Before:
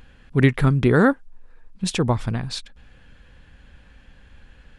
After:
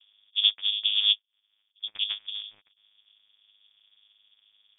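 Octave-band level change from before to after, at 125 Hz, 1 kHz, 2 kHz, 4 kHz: under -40 dB, under -30 dB, -14.0 dB, +12.5 dB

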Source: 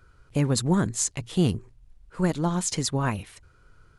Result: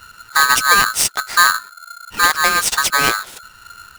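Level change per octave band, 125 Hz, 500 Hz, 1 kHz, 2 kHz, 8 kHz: -13.5 dB, +0.5 dB, +18.5 dB, +25.5 dB, +11.0 dB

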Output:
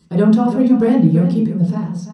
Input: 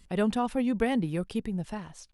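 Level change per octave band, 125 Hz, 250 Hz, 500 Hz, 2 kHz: +19.0 dB, +16.0 dB, +11.5 dB, +3.0 dB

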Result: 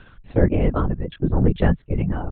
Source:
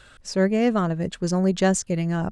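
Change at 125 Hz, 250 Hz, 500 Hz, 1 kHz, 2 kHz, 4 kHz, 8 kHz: +5.0 dB, -1.0 dB, -1.0 dB, -2.5 dB, -3.0 dB, -8.5 dB, under -40 dB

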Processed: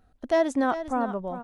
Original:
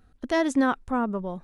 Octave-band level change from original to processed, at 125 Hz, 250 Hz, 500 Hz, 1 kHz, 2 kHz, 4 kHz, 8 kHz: no reading, -3.0 dB, +3.0 dB, +1.0 dB, -3.0 dB, -3.5 dB, -3.5 dB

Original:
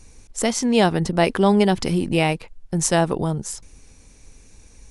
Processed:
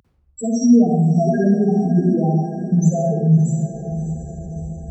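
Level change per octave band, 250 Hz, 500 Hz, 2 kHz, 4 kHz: +6.5 dB, -0.5 dB, under -10 dB, under -10 dB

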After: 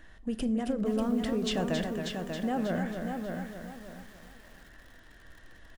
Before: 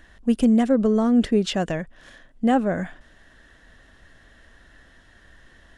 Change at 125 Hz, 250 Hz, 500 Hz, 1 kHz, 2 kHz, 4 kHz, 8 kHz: -5.5 dB, -10.0 dB, -8.5 dB, -8.5 dB, -5.0 dB, -4.0 dB, -4.0 dB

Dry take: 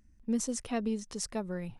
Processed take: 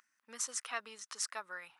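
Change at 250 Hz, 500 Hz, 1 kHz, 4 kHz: -30.0 dB, -14.0 dB, -1.5 dB, +0.5 dB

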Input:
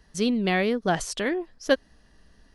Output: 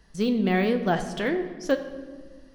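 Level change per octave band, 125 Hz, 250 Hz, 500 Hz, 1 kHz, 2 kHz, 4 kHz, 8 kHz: +2.5 dB, +1.5 dB, 0.0 dB, 0.0 dB, -2.0 dB, -4.5 dB, -9.5 dB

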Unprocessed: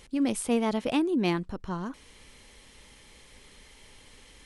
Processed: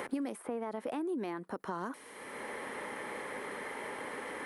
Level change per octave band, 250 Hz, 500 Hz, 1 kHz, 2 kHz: -10.5 dB, -6.0 dB, -2.5 dB, 0.0 dB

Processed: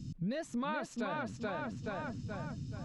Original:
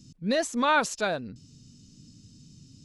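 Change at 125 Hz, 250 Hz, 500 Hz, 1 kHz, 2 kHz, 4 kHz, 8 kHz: +2.5 dB, -5.0 dB, -9.5 dB, -11.0 dB, -11.5 dB, -15.5 dB, -17.0 dB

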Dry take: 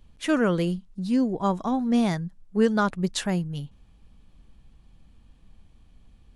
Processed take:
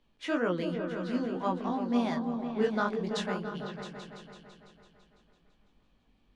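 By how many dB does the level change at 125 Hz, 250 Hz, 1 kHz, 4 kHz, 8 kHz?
-10.0 dB, -7.5 dB, -4.0 dB, -6.0 dB, -12.5 dB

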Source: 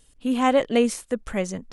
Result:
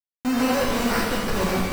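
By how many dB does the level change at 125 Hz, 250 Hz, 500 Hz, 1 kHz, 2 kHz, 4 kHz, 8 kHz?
no reading, +0.5 dB, -2.5 dB, +0.5 dB, +5.5 dB, +5.0 dB, +2.5 dB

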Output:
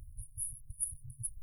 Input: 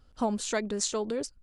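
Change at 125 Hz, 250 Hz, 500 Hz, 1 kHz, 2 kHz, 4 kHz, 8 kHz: -3.5 dB, under -30 dB, under -40 dB, under -40 dB, under -40 dB, under -40 dB, -4.0 dB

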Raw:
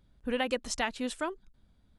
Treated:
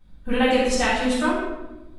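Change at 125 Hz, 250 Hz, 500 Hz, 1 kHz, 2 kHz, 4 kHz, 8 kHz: +16.0 dB, +13.5 dB, +12.0 dB, +12.0 dB, +11.5 dB, +9.5 dB, +8.0 dB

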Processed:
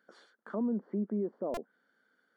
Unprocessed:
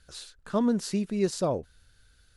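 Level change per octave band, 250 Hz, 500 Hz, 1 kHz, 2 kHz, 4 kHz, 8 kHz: -6.0 dB, -7.5 dB, -9.5 dB, -8.5 dB, under -20 dB, under -20 dB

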